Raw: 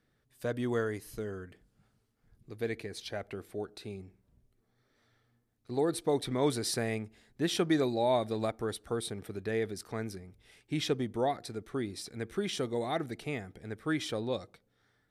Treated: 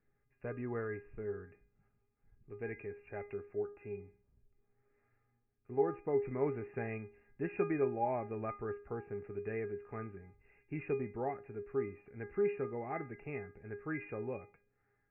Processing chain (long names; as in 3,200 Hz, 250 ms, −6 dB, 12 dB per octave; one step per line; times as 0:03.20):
linear-phase brick-wall low-pass 2,800 Hz
low-shelf EQ 140 Hz +6.5 dB
tuned comb filter 410 Hz, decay 0.34 s, harmonics all, mix 90%
level +8.5 dB